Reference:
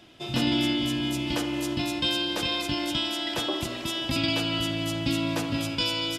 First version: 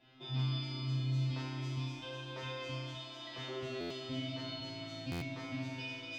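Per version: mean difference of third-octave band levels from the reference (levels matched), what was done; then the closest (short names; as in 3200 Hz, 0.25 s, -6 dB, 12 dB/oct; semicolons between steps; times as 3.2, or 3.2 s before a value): 7.0 dB: limiter -21 dBFS, peak gain reduction 8.5 dB; air absorption 200 m; resonator 130 Hz, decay 1.5 s, mix 100%; stuck buffer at 3.8/5.11, samples 512, times 8; gain +13 dB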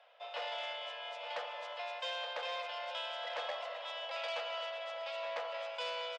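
14.5 dB: steep high-pass 490 Hz 96 dB/oct; tape spacing loss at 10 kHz 41 dB; echo 0.871 s -10.5 dB; core saturation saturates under 2000 Hz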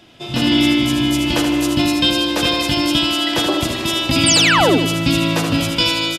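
3.0 dB: AGC gain up to 5.5 dB; painted sound fall, 4.26–4.78, 230–9500 Hz -20 dBFS; on a send: feedback echo 78 ms, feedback 40%, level -6 dB; on the sum: gain +5 dB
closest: third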